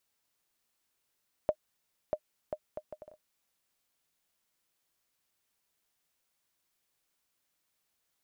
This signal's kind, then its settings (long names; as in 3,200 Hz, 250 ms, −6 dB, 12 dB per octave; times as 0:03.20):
bouncing ball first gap 0.64 s, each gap 0.62, 612 Hz, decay 64 ms −16 dBFS